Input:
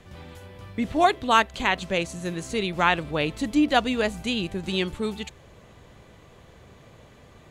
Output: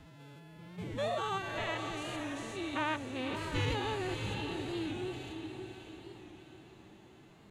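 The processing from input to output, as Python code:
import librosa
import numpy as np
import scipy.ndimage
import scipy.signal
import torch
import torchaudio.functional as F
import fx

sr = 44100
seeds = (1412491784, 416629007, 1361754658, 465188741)

p1 = fx.spec_steps(x, sr, hold_ms=200)
p2 = fx.pitch_keep_formants(p1, sr, semitones=9.5)
p3 = p2 + fx.echo_diffused(p2, sr, ms=590, feedback_pct=48, wet_db=-6.5, dry=0)
p4 = fx.record_warp(p3, sr, rpm=45.0, depth_cents=100.0)
y = p4 * librosa.db_to_amplitude(-8.5)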